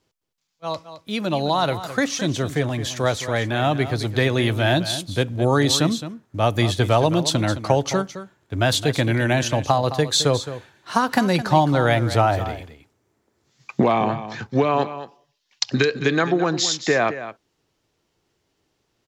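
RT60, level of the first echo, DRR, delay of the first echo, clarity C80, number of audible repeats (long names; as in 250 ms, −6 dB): no reverb audible, −12.5 dB, no reverb audible, 215 ms, no reverb audible, 1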